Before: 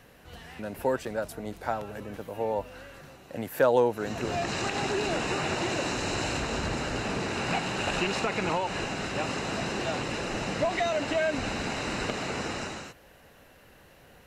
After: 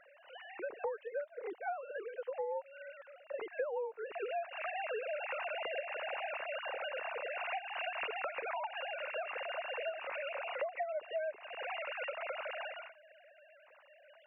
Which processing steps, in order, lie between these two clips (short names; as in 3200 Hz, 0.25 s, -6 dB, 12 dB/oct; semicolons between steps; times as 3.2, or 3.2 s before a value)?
sine-wave speech; compressor 10:1, threshold -37 dBFS, peak gain reduction 23 dB; 8.59–10.64 frequency-shifting echo 96 ms, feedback 39%, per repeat -67 Hz, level -23.5 dB; gain +1.5 dB